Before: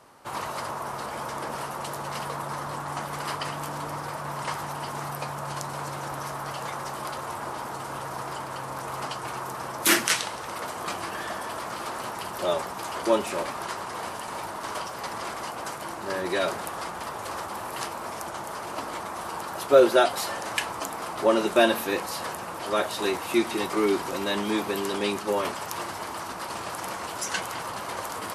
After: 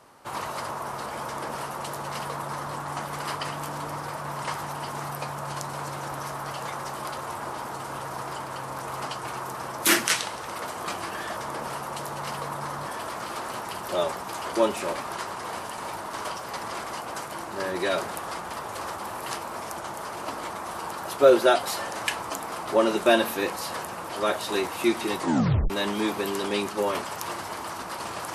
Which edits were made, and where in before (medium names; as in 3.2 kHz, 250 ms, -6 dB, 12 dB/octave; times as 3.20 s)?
1.25–2.75 s: copy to 11.37 s
23.68 s: tape stop 0.52 s